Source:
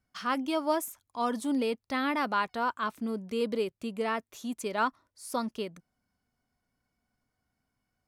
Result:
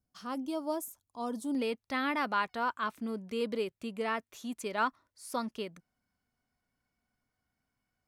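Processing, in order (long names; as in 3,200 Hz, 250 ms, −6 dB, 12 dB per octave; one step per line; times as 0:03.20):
parametric band 2,000 Hz −13 dB 1.7 octaves, from 0:01.55 +3 dB
level −3.5 dB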